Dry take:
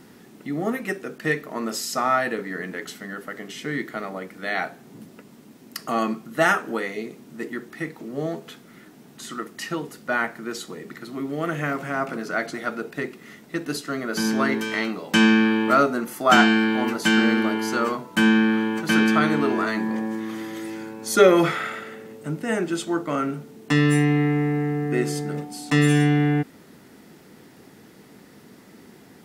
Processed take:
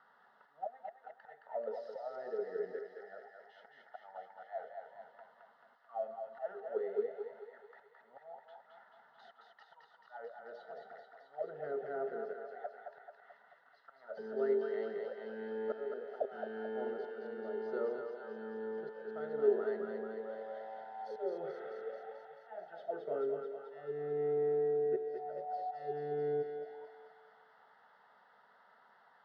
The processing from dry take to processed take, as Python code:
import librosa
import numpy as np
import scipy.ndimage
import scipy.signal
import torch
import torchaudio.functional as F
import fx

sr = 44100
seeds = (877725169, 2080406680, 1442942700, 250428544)

p1 = scipy.signal.sosfilt(scipy.signal.butter(2, 4800.0, 'lowpass', fs=sr, output='sos'), x)
p2 = fx.low_shelf(p1, sr, hz=240.0, db=-8.0)
p3 = fx.auto_swell(p2, sr, attack_ms=607.0)
p4 = fx.fixed_phaser(p3, sr, hz=1600.0, stages=8)
p5 = fx.auto_wah(p4, sr, base_hz=400.0, top_hz=1200.0, q=13.0, full_db=-34.0, direction='down')
p6 = p5 + fx.echo_thinned(p5, sr, ms=218, feedback_pct=76, hz=680.0, wet_db=-3, dry=0)
y = F.gain(torch.from_numpy(p6), 11.5).numpy()